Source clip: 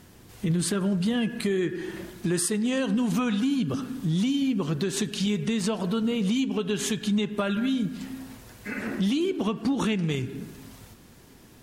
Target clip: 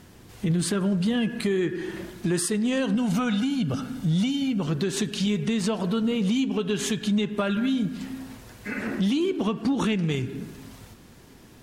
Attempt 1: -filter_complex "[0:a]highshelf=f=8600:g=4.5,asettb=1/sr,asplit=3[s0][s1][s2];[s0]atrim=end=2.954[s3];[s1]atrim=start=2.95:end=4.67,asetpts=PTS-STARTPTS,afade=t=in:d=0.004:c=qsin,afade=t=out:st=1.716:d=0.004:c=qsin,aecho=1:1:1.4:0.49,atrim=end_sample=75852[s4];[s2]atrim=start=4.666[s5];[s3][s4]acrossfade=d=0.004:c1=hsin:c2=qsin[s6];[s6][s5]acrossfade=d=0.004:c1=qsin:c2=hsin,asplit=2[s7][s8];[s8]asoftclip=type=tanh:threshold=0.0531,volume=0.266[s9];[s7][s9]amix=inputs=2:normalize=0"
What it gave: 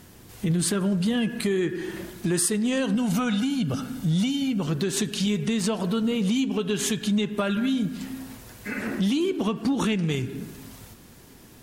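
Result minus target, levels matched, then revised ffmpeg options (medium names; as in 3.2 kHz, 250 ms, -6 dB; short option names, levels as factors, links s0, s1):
8 kHz band +3.5 dB
-filter_complex "[0:a]highshelf=f=8600:g=-5,asettb=1/sr,asplit=3[s0][s1][s2];[s0]atrim=end=2.954[s3];[s1]atrim=start=2.95:end=4.67,asetpts=PTS-STARTPTS,afade=t=in:d=0.004:c=qsin,afade=t=out:st=1.716:d=0.004:c=qsin,aecho=1:1:1.4:0.49,atrim=end_sample=75852[s4];[s2]atrim=start=4.666[s5];[s3][s4]acrossfade=d=0.004:c1=hsin:c2=qsin[s6];[s6][s5]acrossfade=d=0.004:c1=qsin:c2=hsin,asplit=2[s7][s8];[s8]asoftclip=type=tanh:threshold=0.0531,volume=0.266[s9];[s7][s9]amix=inputs=2:normalize=0"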